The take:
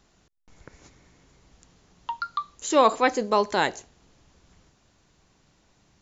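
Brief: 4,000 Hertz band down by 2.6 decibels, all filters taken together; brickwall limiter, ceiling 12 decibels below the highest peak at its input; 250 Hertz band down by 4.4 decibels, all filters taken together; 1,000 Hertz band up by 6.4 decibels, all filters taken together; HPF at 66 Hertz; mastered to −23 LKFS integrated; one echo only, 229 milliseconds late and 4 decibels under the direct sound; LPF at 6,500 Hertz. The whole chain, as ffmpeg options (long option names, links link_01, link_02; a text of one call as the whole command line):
ffmpeg -i in.wav -af "highpass=66,lowpass=6500,equalizer=frequency=250:width_type=o:gain=-6,equalizer=frequency=1000:width_type=o:gain=8,equalizer=frequency=4000:width_type=o:gain=-3,alimiter=limit=-14dB:level=0:latency=1,aecho=1:1:229:0.631,volume=3dB" out.wav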